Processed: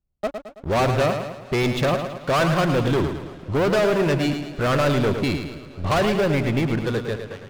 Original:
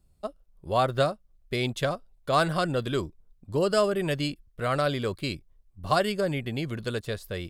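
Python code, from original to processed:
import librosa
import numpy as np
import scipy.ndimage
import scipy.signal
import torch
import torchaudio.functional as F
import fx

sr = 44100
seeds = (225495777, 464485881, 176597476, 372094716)

y = fx.fade_out_tail(x, sr, length_s=0.89)
y = scipy.signal.sosfilt(scipy.signal.butter(2, 2900.0, 'lowpass', fs=sr, output='sos'), y)
y = fx.leveller(y, sr, passes=5)
y = fx.echo_feedback(y, sr, ms=109, feedback_pct=48, wet_db=-7.5)
y = fx.echo_warbled(y, sr, ms=233, feedback_pct=78, rate_hz=2.8, cents=106, wet_db=-24)
y = y * librosa.db_to_amplitude(-5.5)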